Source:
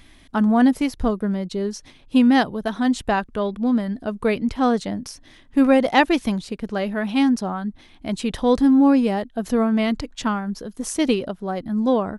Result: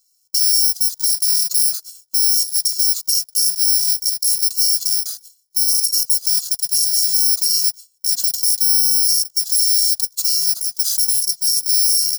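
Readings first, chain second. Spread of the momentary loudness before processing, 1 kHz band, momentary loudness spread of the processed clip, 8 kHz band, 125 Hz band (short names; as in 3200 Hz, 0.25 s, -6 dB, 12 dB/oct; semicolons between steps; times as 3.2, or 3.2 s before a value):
12 LU, under -25 dB, 5 LU, +24.5 dB, under -35 dB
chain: FFT order left unsorted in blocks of 128 samples; gate with hold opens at -36 dBFS; Bessel high-pass 1100 Hz, order 2; resonant high shelf 3500 Hz +13.5 dB, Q 3; compressor 6:1, threshold -6 dBFS, peak gain reduction 11.5 dB; limiter -4.5 dBFS, peak gain reduction 8 dB; cascading phaser rising 0.68 Hz; gain -3 dB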